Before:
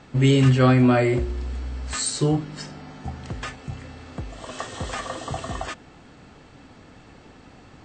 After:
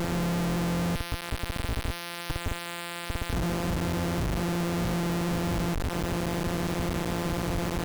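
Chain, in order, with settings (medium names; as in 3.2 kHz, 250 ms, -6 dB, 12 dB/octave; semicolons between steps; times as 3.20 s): sorted samples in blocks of 256 samples; 0.95–3.33 s: high-pass 1.4 kHz 12 dB/octave; upward compressor, threshold -26 dBFS; Schmitt trigger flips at -38.5 dBFS; trim -2 dB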